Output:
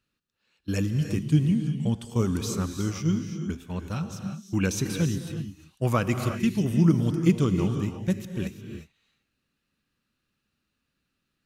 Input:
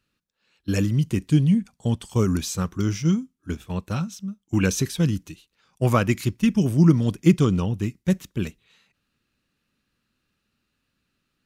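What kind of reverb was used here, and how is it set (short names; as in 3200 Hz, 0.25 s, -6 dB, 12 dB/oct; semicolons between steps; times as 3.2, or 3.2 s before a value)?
non-linear reverb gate 0.38 s rising, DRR 6.5 dB; gain -4.5 dB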